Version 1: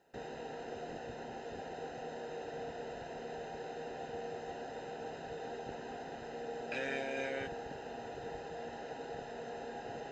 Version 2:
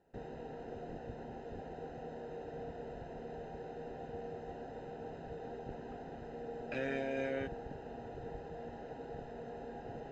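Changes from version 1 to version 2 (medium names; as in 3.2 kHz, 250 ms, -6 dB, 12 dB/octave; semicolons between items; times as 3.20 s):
background -5.0 dB; master: add tilt EQ -3 dB/octave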